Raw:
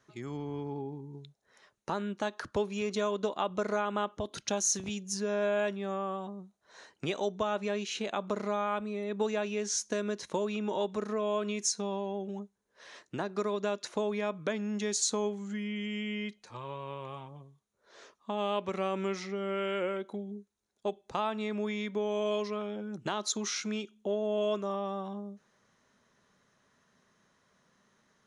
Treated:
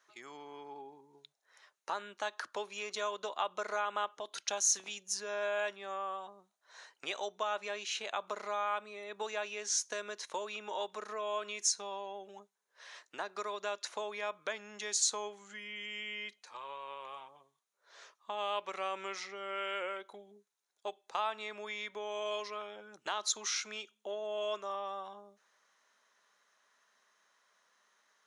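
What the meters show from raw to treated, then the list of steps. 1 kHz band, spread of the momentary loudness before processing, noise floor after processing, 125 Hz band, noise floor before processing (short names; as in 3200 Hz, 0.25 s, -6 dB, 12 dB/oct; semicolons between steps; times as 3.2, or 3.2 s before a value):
-1.5 dB, 11 LU, -81 dBFS, under -20 dB, -75 dBFS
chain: HPF 770 Hz 12 dB/oct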